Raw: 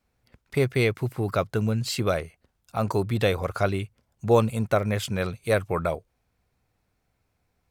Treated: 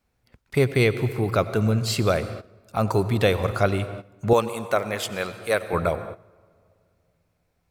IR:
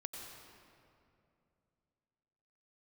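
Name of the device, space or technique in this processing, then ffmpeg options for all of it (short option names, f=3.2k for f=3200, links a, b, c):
keyed gated reverb: -filter_complex "[0:a]asplit=3[a][b][c];[1:a]atrim=start_sample=2205[d];[b][d]afir=irnorm=-1:irlink=0[e];[c]apad=whole_len=339587[f];[e][f]sidechaingate=range=-15dB:threshold=-50dB:ratio=16:detection=peak,volume=-3.5dB[g];[a][g]amix=inputs=2:normalize=0,asettb=1/sr,asplit=3[h][i][j];[h]atrim=end=4.334[k];[i]atrim=start=4.33:end=5.73,asetpts=PTS-STARTPTS,afade=t=in:d=0.004:c=qsin,afade=t=out:st=1.396:d=0.004:c=qsin,highpass=f=550:p=1[l];[j]atrim=start=5.726[m];[k][l]acrossfade=d=0.004:c1=hsin:c2=qsin[n];[n][m]acrossfade=d=0.004:c1=qsin:c2=hsin"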